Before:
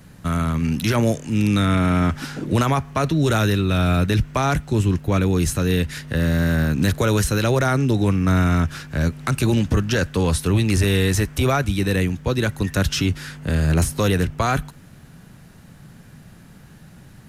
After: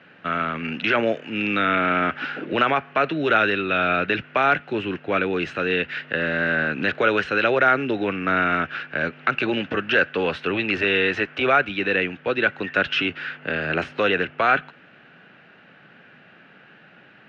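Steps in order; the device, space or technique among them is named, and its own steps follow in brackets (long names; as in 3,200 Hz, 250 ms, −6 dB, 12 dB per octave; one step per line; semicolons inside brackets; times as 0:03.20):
phone earpiece (loudspeaker in its box 410–3,000 Hz, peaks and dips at 990 Hz −7 dB, 1,500 Hz +6 dB, 2,700 Hz +7 dB)
level +3 dB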